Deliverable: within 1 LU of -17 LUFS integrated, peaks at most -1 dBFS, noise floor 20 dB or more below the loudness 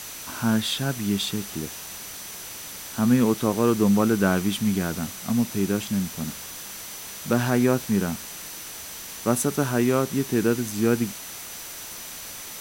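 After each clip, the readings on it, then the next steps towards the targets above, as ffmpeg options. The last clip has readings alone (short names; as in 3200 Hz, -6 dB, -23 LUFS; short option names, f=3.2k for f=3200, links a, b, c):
steady tone 6000 Hz; tone level -44 dBFS; noise floor -38 dBFS; noise floor target -46 dBFS; loudness -25.5 LUFS; peak -6.0 dBFS; loudness target -17.0 LUFS
-> -af "bandreject=f=6k:w=30"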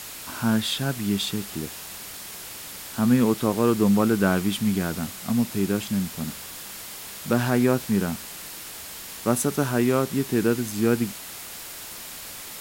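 steady tone none; noise floor -39 dBFS; noise floor target -45 dBFS
-> -af "afftdn=nr=6:nf=-39"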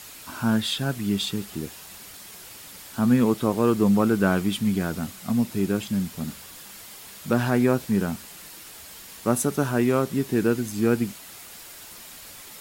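noise floor -44 dBFS; loudness -24.0 LUFS; peak -6.0 dBFS; loudness target -17.0 LUFS
-> -af "volume=7dB,alimiter=limit=-1dB:level=0:latency=1"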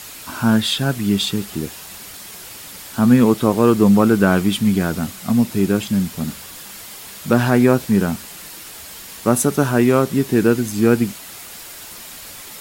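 loudness -17.0 LUFS; peak -1.0 dBFS; noise floor -37 dBFS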